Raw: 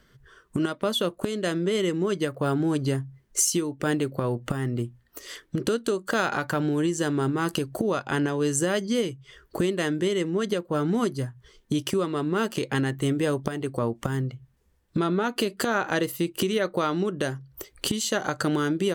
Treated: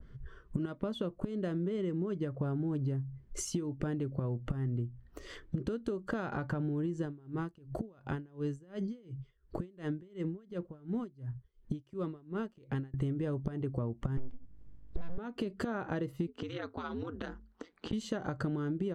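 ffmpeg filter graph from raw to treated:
-filter_complex "[0:a]asettb=1/sr,asplit=3[a][b][c];[a]atrim=end=7.054[d];[b]atrim=start=7.05:end=12.94,asetpts=PTS-STARTPTS,afade=t=in:d=0.004:c=qsin,afade=t=out:st=5.886:d=0.004:c=qsin,acompressor=threshold=-32dB:ratio=1.5:attack=3.2:release=140:knee=1:detection=peak,aeval=exprs='val(0)*pow(10,-30*(0.5-0.5*cos(2*PI*2.8*n/s))/20)':c=same[e];[c]atrim=start=12.936[f];[d][e]acrossfade=d=0.004:c1=hsin:c2=qsin[g];[g][f]acrossfade=d=0.004:c1=qsin:c2=hsin,asettb=1/sr,asplit=3[h][i][j];[h]atrim=end=14.174[k];[i]atrim=start=14.17:end=15.18,asetpts=PTS-STARTPTS,afade=t=in:d=0.004:c=qsin,afade=t=out:st=1.006:d=0.004:c=qsin,aeval=exprs='val(0)+0.000794*(sin(2*PI*50*n/s)+sin(2*PI*2*50*n/s)/2+sin(2*PI*3*50*n/s)/3+sin(2*PI*4*50*n/s)/4+sin(2*PI*5*50*n/s)/5)':c=same,aeval=exprs='abs(val(0))':c=same[l];[j]atrim=start=15.176[m];[k][l]acrossfade=d=0.004:c1=hsin:c2=qsin[n];[n][m]acrossfade=d=0.004:c1=qsin:c2=hsin,asettb=1/sr,asplit=3[o][p][q];[o]atrim=end=16.274[r];[p]atrim=start=16.27:end=17.93,asetpts=PTS-STARTPTS,afade=t=in:d=0.004:c=qsin,afade=t=out:st=1.656:d=0.004:c=qsin,highpass=f=210:w=0.5412,highpass=f=210:w=1.3066,equalizer=f=210:t=q:w=4:g=-7,equalizer=f=350:t=q:w=4:g=3,equalizer=f=500:t=q:w=4:g=-8,equalizer=f=890:t=q:w=4:g=6,equalizer=f=1.4k:t=q:w=4:g=6,equalizer=f=3.8k:t=q:w=4:g=4,lowpass=f=6.8k:w=0.5412,lowpass=f=6.8k:w=1.3066,acrossover=split=1000|2500[s][t][u];[s]acompressor=threshold=-36dB:ratio=4[v];[t]acompressor=threshold=-37dB:ratio=4[w];[u]acompressor=threshold=-35dB:ratio=4[x];[v][w][x]amix=inputs=3:normalize=0,aeval=exprs='val(0)*sin(2*PI*85*n/s)':c=same[y];[q]atrim=start=17.926[z];[r][y]acrossfade=d=0.004:c1=hsin:c2=qsin[aa];[aa][z]acrossfade=d=0.004:c1=qsin:c2=hsin,aemphasis=mode=reproduction:type=riaa,acompressor=threshold=-27dB:ratio=6,adynamicequalizer=threshold=0.00398:dfrequency=1700:dqfactor=0.7:tfrequency=1700:tqfactor=0.7:attack=5:release=100:ratio=0.375:range=2:mode=cutabove:tftype=highshelf,volume=-4.5dB"

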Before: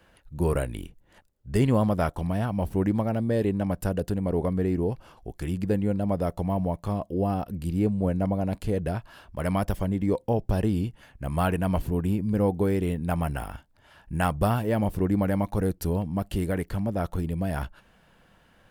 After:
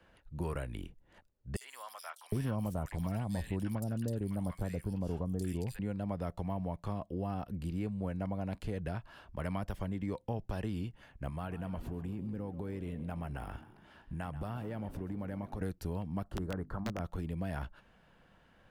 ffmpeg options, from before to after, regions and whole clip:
-filter_complex "[0:a]asettb=1/sr,asplit=3[a][b][c];[a]atrim=end=1.564[d];[b]atrim=start=1.56:end=5.79,asetpts=PTS-STARTPTS,afade=t=in:d=0.004:c=qsin,afade=t=out:st=4.226:d=0.004:c=qsin,bass=f=250:g=6,treble=f=4k:g=15,acrossover=split=1100|3400[e][f][g];[f]adelay=50[h];[e]adelay=760[i];[i][h][g]amix=inputs=3:normalize=0,atrim=end_sample=186543[j];[c]atrim=start=5.786[k];[d][j]acrossfade=d=0.004:c1=hsin:c2=qsin[l];[l][k]acrossfade=d=0.004:c1=qsin:c2=hsin,asettb=1/sr,asplit=3[m][n][o];[m]atrim=end=11.294[p];[n]atrim=start=11.29:end=15.61,asetpts=PTS-STARTPTS,afade=t=in:d=0.004:c=qsin,afade=t=out:st=4.316:d=0.004:c=qsin,acompressor=threshold=-31dB:ratio=4:attack=3.2:release=140:knee=1:detection=peak,asplit=6[q][r][s][t][u][v];[r]adelay=133,afreqshift=48,volume=-15.5dB[w];[s]adelay=266,afreqshift=96,volume=-20.5dB[x];[t]adelay=399,afreqshift=144,volume=-25.6dB[y];[u]adelay=532,afreqshift=192,volume=-30.6dB[z];[v]adelay=665,afreqshift=240,volume=-35.6dB[aa];[q][w][x][y][z][aa]amix=inputs=6:normalize=0,atrim=end_sample=190512[ab];[o]atrim=start=15.606[ac];[p][ab]acrossfade=d=0.004:c1=hsin:c2=qsin[ad];[ad][ac]acrossfade=d=0.004:c1=qsin:c2=hsin,asettb=1/sr,asplit=3[ae][af][ag];[ae]atrim=end=16.244[ah];[af]atrim=start=16.24:end=17,asetpts=PTS-STARTPTS,afade=t=in:d=0.004:c=qsin,afade=t=out:st=0.756:d=0.004:c=qsin,highshelf=f=1.8k:t=q:w=3:g=-11,aeval=exprs='(mod(7.5*val(0)+1,2)-1)/7.5':c=same,bandreject=f=50:t=h:w=6,bandreject=f=100:t=h:w=6,bandreject=f=150:t=h:w=6,bandreject=f=200:t=h:w=6,bandreject=f=250:t=h:w=6,bandreject=f=300:t=h:w=6[ai];[ag]atrim=start=16.996[aj];[ah][ai]acrossfade=d=0.004:c1=hsin:c2=qsin[ak];[ak][aj]acrossfade=d=0.004:c1=qsin:c2=hsin,acrossover=split=230|930[al][am][an];[al]acompressor=threshold=-32dB:ratio=4[ao];[am]acompressor=threshold=-38dB:ratio=4[ap];[an]acompressor=threshold=-38dB:ratio=4[aq];[ao][ap][aq]amix=inputs=3:normalize=0,highshelf=f=6.6k:g=-11,volume=-4.5dB"

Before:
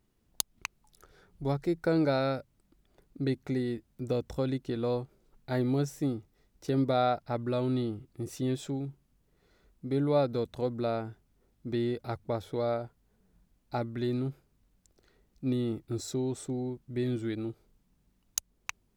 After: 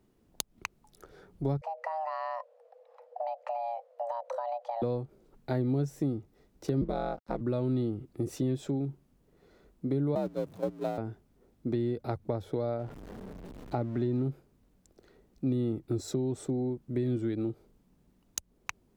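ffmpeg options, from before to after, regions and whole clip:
-filter_complex "[0:a]asettb=1/sr,asplit=3[a][b][c];[a]atrim=end=1.614[d];[b]atrim=start=1.61:end=4.82,asetpts=PTS-STARTPTS,afade=t=in:d=0.004:c=qsin,afade=t=out:st=3.206:d=0.004:c=qsin,aemphasis=mode=reproduction:type=75fm,acompressor=threshold=-36dB:ratio=10:attack=3.2:release=140:knee=1:detection=peak,afreqshift=460[e];[c]atrim=start=4.816[f];[d][e]acrossfade=d=0.004:c1=hsin:c2=qsin[g];[g][f]acrossfade=d=0.004:c1=qsin:c2=hsin,asettb=1/sr,asplit=3[h][i][j];[h]atrim=end=6.814[k];[i]atrim=start=6.81:end=7.41,asetpts=PTS-STARTPTS,afade=t=in:d=0.004:c=qsin,afade=t=out:st=0.596:d=0.004:c=qsin,aeval=exprs='val(0)*sin(2*PI*86*n/s)':c=same,aeval=exprs='sgn(val(0))*max(abs(val(0))-0.00133,0)':c=same[l];[j]atrim=start=7.406[m];[k][l]acrossfade=d=0.004:c1=hsin:c2=qsin[n];[n][m]acrossfade=d=0.004:c1=qsin:c2=hsin,asettb=1/sr,asplit=3[o][p][q];[o]atrim=end=10.154[r];[p]atrim=start=10.15:end=10.98,asetpts=PTS-STARTPTS,afade=t=in:d=0.004:c=qsin,afade=t=out:st=0.826:d=0.004:c=qsin,aeval=exprs='val(0)+0.5*0.0251*sgn(val(0))':c=same,agate=range=-16dB:threshold=-28dB:ratio=16:release=100:detection=peak,afreqshift=55[s];[q]atrim=start=10.976[t];[r][s]acrossfade=d=0.004:c1=hsin:c2=qsin[u];[u][t]acrossfade=d=0.004:c1=qsin:c2=hsin,asettb=1/sr,asplit=3[v][w][x];[v]atrim=end=12.794[y];[w]atrim=start=12.79:end=14.23,asetpts=PTS-STARTPTS,afade=t=in:d=0.004:c=qsin,afade=t=out:st=1.436:d=0.004:c=qsin,aeval=exprs='val(0)+0.5*0.00668*sgn(val(0))':c=same,lowpass=f=2.8k:p=1[z];[x]atrim=start=14.226[aa];[y][z]acrossfade=d=0.004:c1=hsin:c2=qsin[ab];[ab][aa]acrossfade=d=0.004:c1=qsin:c2=hsin,equalizer=f=380:t=o:w=3:g=9,acrossover=split=140[ac][ad];[ad]acompressor=threshold=-30dB:ratio=6[ae];[ac][ae]amix=inputs=2:normalize=0"

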